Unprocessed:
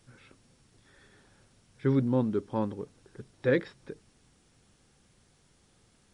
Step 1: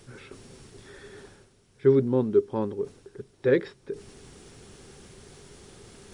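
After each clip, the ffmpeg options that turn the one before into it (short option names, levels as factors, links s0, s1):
-af "equalizer=f=400:w=5.3:g=12.5,areverse,acompressor=mode=upward:threshold=0.0178:ratio=2.5,areverse"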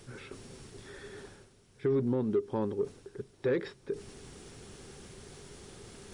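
-filter_complex "[0:a]asplit=2[s0][s1];[s1]asoftclip=type=tanh:threshold=0.0891,volume=0.668[s2];[s0][s2]amix=inputs=2:normalize=0,alimiter=limit=0.15:level=0:latency=1:release=102,volume=0.562"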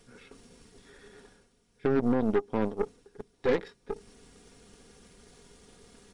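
-af "aecho=1:1:4.2:0.56,aeval=exprs='0.133*(cos(1*acos(clip(val(0)/0.133,-1,1)))-cos(1*PI/2))+0.0211*(cos(6*acos(clip(val(0)/0.133,-1,1)))-cos(6*PI/2))+0.0119*(cos(7*acos(clip(val(0)/0.133,-1,1)))-cos(7*PI/2))+0.0075*(cos(8*acos(clip(val(0)/0.133,-1,1)))-cos(8*PI/2))':c=same,volume=1.19"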